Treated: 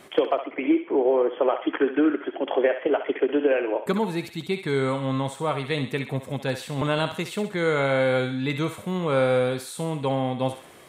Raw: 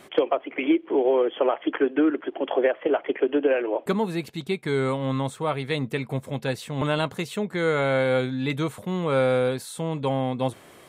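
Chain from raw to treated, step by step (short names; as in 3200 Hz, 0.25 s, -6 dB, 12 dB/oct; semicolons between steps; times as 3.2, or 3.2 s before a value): 0.44–1.48 LPF 2100 Hz 12 dB/oct; thinning echo 65 ms, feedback 50%, high-pass 830 Hz, level -7 dB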